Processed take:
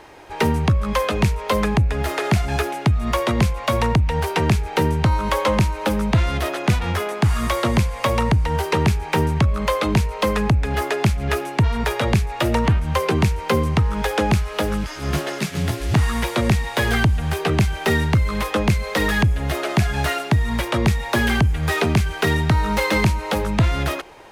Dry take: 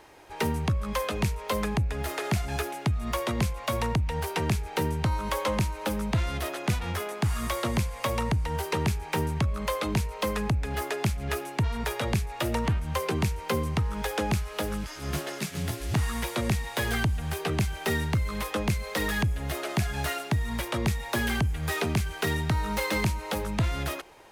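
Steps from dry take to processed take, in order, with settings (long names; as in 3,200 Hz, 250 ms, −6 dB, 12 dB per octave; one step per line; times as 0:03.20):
high-shelf EQ 6,600 Hz −8 dB
level +9 dB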